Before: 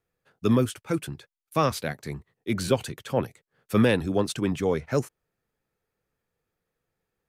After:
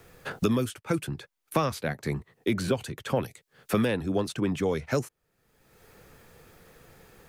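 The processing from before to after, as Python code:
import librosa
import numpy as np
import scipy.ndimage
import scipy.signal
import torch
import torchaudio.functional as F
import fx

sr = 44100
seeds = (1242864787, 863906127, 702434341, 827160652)

y = fx.band_squash(x, sr, depth_pct=100)
y = F.gain(torch.from_numpy(y), -2.5).numpy()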